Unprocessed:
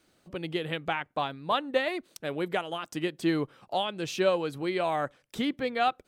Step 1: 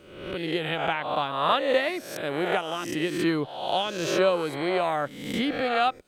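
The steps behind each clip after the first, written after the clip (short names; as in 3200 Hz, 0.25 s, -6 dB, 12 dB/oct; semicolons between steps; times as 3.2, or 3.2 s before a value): spectral swells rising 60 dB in 0.88 s; gain +1 dB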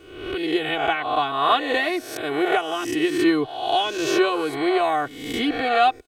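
comb 2.7 ms, depth 95%; gain +1.5 dB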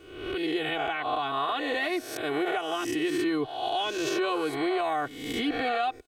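limiter -16.5 dBFS, peak gain reduction 10 dB; gain -3.5 dB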